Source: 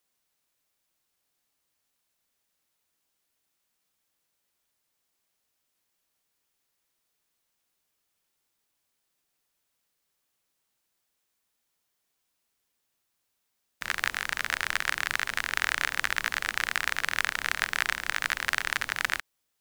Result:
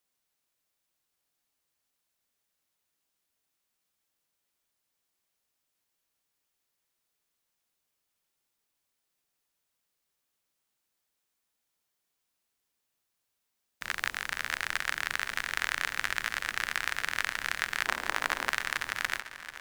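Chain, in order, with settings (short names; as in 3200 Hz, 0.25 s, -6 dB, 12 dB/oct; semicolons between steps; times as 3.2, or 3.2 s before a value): 17.86–18.5 band shelf 510 Hz +9 dB 2.7 oct; swung echo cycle 0.732 s, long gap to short 1.5:1, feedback 44%, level -14 dB; gain -3.5 dB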